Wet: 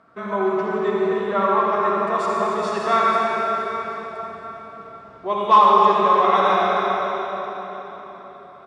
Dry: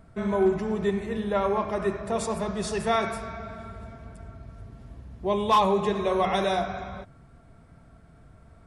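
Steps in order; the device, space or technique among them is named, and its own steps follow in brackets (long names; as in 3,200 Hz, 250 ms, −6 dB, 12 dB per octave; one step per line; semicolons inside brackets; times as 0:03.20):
station announcement (band-pass filter 300–4,800 Hz; parametric band 1,200 Hz +11.5 dB 0.55 octaves; loudspeakers that aren't time-aligned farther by 27 metres −10 dB, 95 metres −10 dB; convolution reverb RT60 4.4 s, pre-delay 48 ms, DRR −2 dB)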